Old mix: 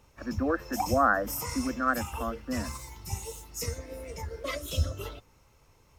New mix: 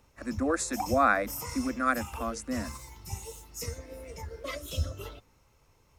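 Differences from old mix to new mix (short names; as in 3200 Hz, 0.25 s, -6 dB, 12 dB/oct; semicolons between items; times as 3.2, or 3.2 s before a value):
speech: remove brick-wall FIR low-pass 1900 Hz; background -3.0 dB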